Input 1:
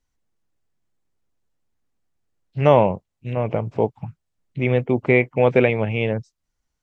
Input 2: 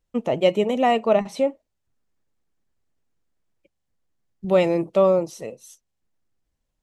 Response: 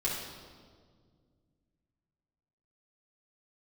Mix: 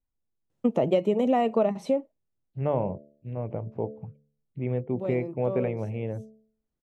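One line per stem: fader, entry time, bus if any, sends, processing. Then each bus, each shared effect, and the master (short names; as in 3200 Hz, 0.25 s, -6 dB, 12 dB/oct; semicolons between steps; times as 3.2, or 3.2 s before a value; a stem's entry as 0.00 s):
-13.0 dB, 0.00 s, no send, high shelf 3000 Hz -12 dB; de-hum 72.84 Hz, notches 9
+1.5 dB, 0.50 s, no send, HPF 100 Hz 24 dB/oct; auto duck -20 dB, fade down 0.85 s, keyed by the first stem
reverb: off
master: tilt shelf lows +5.5 dB; compressor 10:1, threshold -19 dBFS, peak gain reduction 11.5 dB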